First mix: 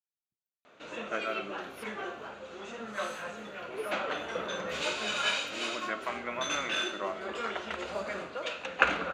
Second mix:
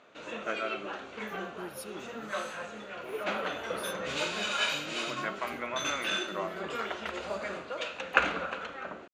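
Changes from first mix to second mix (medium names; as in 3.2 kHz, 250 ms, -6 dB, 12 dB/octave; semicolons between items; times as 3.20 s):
speech +10.5 dB; background: entry -0.65 s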